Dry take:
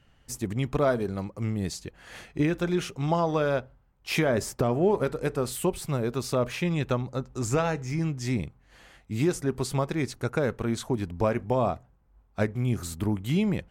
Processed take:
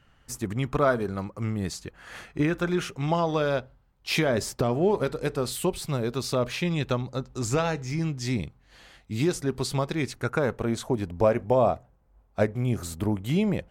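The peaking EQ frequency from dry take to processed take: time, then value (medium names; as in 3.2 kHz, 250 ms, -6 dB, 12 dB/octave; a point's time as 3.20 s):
peaking EQ +6 dB 0.88 oct
2.79 s 1.3 kHz
3.39 s 4.1 kHz
9.92 s 4.1 kHz
10.63 s 580 Hz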